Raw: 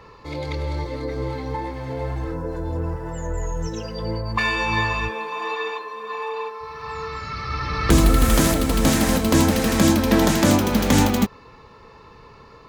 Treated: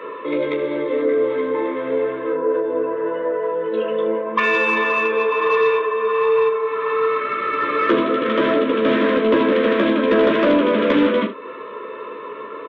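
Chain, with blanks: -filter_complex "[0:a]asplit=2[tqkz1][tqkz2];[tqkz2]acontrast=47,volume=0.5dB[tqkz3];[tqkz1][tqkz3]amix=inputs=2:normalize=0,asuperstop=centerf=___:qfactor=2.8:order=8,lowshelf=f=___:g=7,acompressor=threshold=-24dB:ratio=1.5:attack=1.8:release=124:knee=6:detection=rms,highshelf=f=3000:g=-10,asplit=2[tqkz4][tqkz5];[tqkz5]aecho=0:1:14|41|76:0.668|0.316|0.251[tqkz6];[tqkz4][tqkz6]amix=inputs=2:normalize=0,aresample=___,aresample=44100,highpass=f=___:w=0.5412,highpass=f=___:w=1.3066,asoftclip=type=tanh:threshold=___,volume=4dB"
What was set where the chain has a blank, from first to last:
780, 460, 8000, 340, 340, -10dB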